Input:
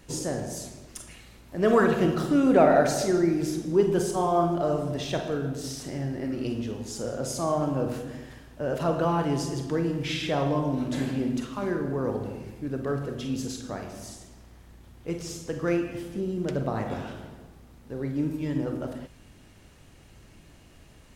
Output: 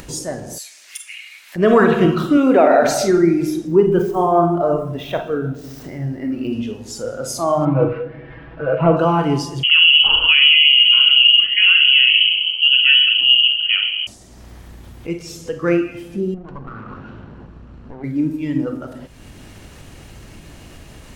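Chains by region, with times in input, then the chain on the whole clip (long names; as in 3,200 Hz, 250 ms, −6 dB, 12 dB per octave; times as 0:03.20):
0:00.58–0:01.56: high-pass with resonance 2,100 Hz, resonance Q 1.7 + noise that follows the level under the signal 35 dB
0:02.37–0:02.83: running median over 5 samples + high-pass filter 260 Hz
0:03.67–0:06.53: running median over 5 samples + dynamic equaliser 4,700 Hz, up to −8 dB, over −52 dBFS, Q 0.82
0:07.65–0:08.97: variable-slope delta modulation 32 kbit/s + low-pass filter 2,500 Hz 24 dB per octave + comb filter 6.1 ms, depth 88%
0:09.63–0:14.07: low-shelf EQ 470 Hz +12 dB + voice inversion scrambler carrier 3,100 Hz
0:16.34–0:18.04: lower of the sound and its delayed copy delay 0.7 ms + head-to-tape spacing loss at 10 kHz 29 dB + downward compressor 1.5 to 1, threshold −44 dBFS
whole clip: noise reduction from a noise print of the clip's start 9 dB; upward compression, threshold −36 dBFS; boost into a limiter +11.5 dB; level −2 dB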